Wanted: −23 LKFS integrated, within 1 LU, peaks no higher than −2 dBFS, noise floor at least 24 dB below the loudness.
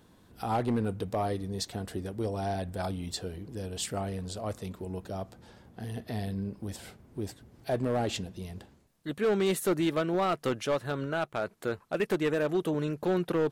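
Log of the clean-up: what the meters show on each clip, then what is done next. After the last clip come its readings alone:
share of clipped samples 1.5%; peaks flattened at −22.0 dBFS; integrated loudness −32.0 LKFS; sample peak −22.0 dBFS; target loudness −23.0 LKFS
→ clipped peaks rebuilt −22 dBFS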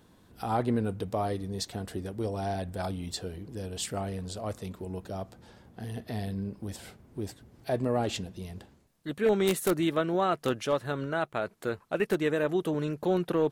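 share of clipped samples 0.0%; integrated loudness −31.5 LKFS; sample peak −13.0 dBFS; target loudness −23.0 LKFS
→ level +8.5 dB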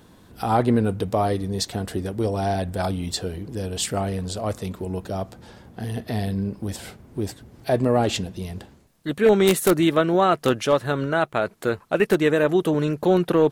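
integrated loudness −23.0 LKFS; sample peak −4.5 dBFS; background noise floor −52 dBFS

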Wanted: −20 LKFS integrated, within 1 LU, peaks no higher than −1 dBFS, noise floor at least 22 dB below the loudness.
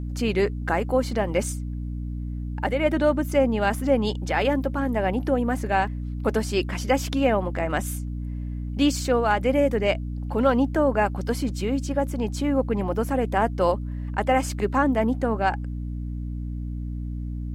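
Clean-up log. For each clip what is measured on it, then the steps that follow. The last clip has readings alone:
mains hum 60 Hz; hum harmonics up to 300 Hz; level of the hum −28 dBFS; integrated loudness −25.0 LKFS; sample peak −8.5 dBFS; target loudness −20.0 LKFS
→ mains-hum notches 60/120/180/240/300 Hz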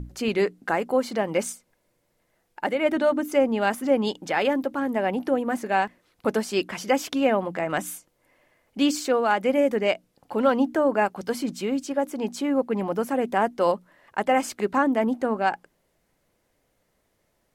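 mains hum none found; integrated loudness −25.0 LKFS; sample peak −8.5 dBFS; target loudness −20.0 LKFS
→ level +5 dB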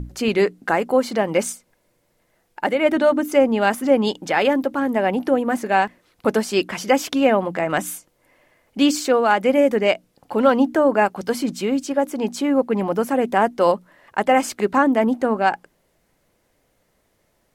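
integrated loudness −20.0 LKFS; sample peak −3.5 dBFS; background noise floor −66 dBFS

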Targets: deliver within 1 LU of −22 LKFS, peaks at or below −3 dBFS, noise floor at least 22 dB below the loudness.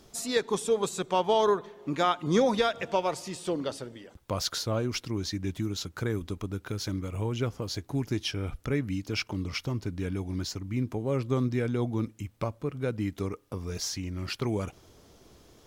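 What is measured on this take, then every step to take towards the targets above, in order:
integrated loudness −30.5 LKFS; sample peak −13.0 dBFS; target loudness −22.0 LKFS
→ level +8.5 dB

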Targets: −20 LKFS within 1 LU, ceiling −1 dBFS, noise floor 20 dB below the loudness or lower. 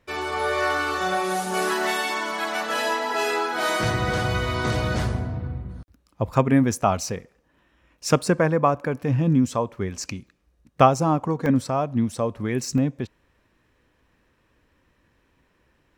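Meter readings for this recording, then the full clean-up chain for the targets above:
number of dropouts 3; longest dropout 1.2 ms; integrated loudness −23.5 LKFS; sample peak −2.0 dBFS; target loudness −20.0 LKFS
→ repair the gap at 0:07.01/0:11.46/0:12.78, 1.2 ms
level +3.5 dB
brickwall limiter −1 dBFS

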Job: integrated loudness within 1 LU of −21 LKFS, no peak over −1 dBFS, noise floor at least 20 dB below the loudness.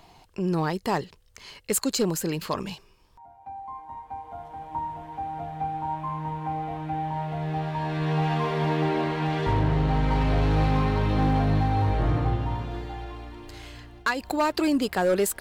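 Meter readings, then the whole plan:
share of clipped samples 1.2%; peaks flattened at −17.0 dBFS; integrated loudness −26.5 LKFS; sample peak −17.0 dBFS; target loudness −21.0 LKFS
→ clipped peaks rebuilt −17 dBFS
level +5.5 dB

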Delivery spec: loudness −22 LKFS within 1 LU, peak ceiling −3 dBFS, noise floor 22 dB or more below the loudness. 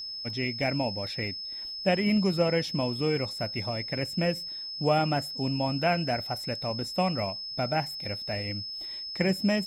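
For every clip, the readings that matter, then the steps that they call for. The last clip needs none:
interfering tone 5,200 Hz; level of the tone −35 dBFS; integrated loudness −29.0 LKFS; sample peak −12.0 dBFS; target loudness −22.0 LKFS
→ notch filter 5,200 Hz, Q 30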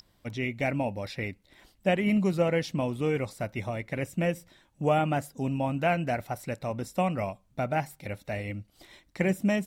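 interfering tone none found; integrated loudness −30.0 LKFS; sample peak −12.5 dBFS; target loudness −22.0 LKFS
→ level +8 dB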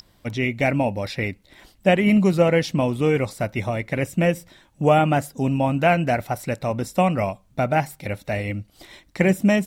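integrated loudness −22.0 LKFS; sample peak −4.5 dBFS; background noise floor −58 dBFS

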